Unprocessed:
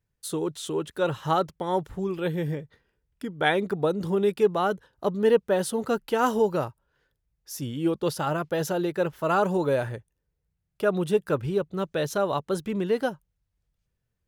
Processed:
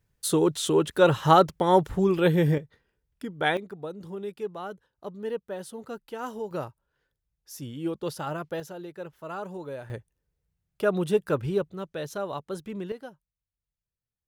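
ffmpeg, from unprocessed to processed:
-af "asetnsamples=n=441:p=0,asendcmd='2.58 volume volume -2dB;3.57 volume volume -12dB;6.51 volume volume -5.5dB;8.6 volume volume -13dB;9.9 volume volume -0.5dB;11.73 volume volume -7dB;12.92 volume volume -15dB',volume=6.5dB"

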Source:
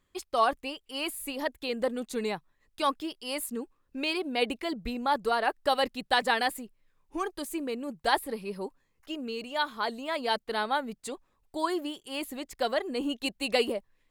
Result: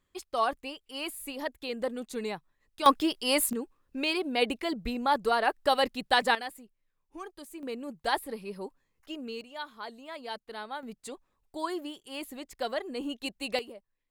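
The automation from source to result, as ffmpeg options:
-af "asetnsamples=n=441:p=0,asendcmd='2.86 volume volume 8dB;3.53 volume volume 1dB;6.35 volume volume -10dB;7.63 volume volume -3dB;9.41 volume volume -10dB;10.83 volume volume -4dB;13.59 volume volume -14.5dB',volume=-3dB"

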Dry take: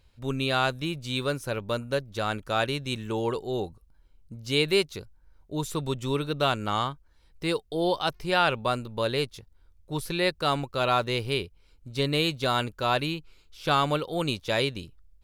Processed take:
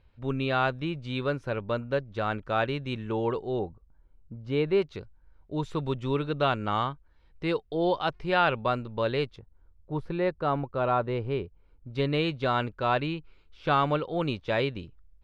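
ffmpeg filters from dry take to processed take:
-af "asetnsamples=n=441:p=0,asendcmd='3.59 lowpass f 1400;4.82 lowpass f 2700;9.36 lowpass f 1300;11.95 lowpass f 2400',lowpass=2.4k"

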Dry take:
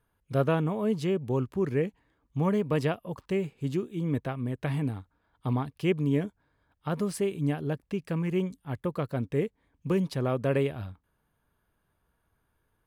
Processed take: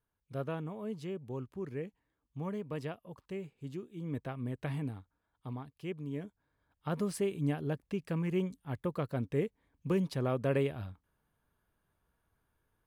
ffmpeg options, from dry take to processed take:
-af "volume=4dB,afade=t=in:st=3.9:d=0.58:silence=0.473151,afade=t=out:st=4.48:d=1.09:silence=0.398107,afade=t=in:st=6.12:d=0.83:silence=0.334965"

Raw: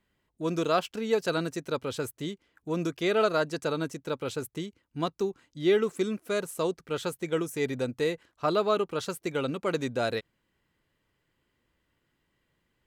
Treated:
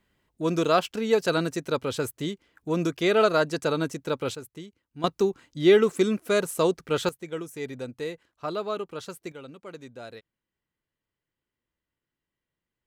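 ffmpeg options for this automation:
-af "asetnsamples=n=441:p=0,asendcmd='4.35 volume volume -6dB;5.04 volume volume 6dB;7.09 volume volume -5dB;9.32 volume volume -13dB',volume=4dB"

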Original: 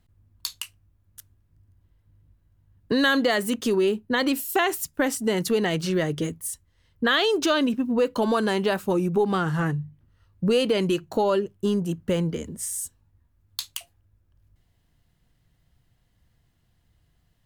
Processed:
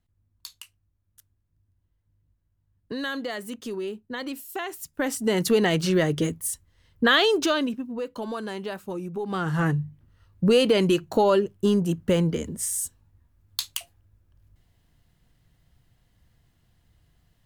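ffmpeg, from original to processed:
-af "volume=14.5dB,afade=t=in:st=4.76:d=0.74:silence=0.237137,afade=t=out:st=7.16:d=0.72:silence=0.251189,afade=t=in:st=9.22:d=0.49:silence=0.251189"

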